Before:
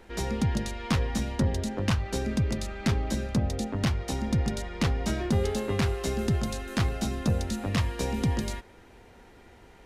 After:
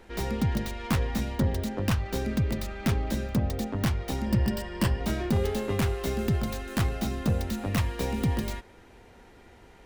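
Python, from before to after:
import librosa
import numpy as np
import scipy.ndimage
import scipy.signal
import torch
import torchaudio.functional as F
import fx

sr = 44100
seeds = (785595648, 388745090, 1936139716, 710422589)

y = fx.tracing_dist(x, sr, depth_ms=0.2)
y = fx.ripple_eq(y, sr, per_octave=1.3, db=10, at=(4.26, 5.01))
y = 10.0 ** (-16.5 / 20.0) * (np.abs((y / 10.0 ** (-16.5 / 20.0) + 3.0) % 4.0 - 2.0) - 1.0)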